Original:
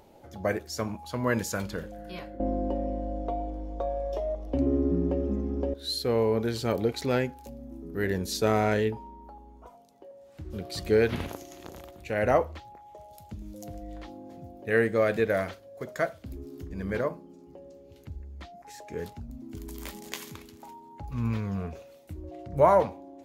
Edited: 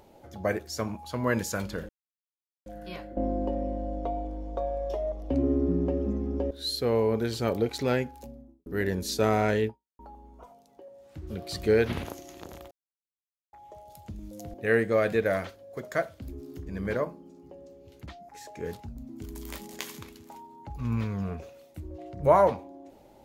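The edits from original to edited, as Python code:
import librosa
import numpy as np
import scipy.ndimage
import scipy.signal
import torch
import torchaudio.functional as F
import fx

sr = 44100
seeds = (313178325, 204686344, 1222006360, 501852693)

y = fx.studio_fade_out(x, sr, start_s=7.41, length_s=0.48)
y = fx.edit(y, sr, fx.insert_silence(at_s=1.89, length_s=0.77),
    fx.fade_out_span(start_s=8.91, length_s=0.31, curve='exp'),
    fx.silence(start_s=11.94, length_s=0.82),
    fx.cut(start_s=13.77, length_s=0.81),
    fx.cut(start_s=18.1, length_s=0.29), tone=tone)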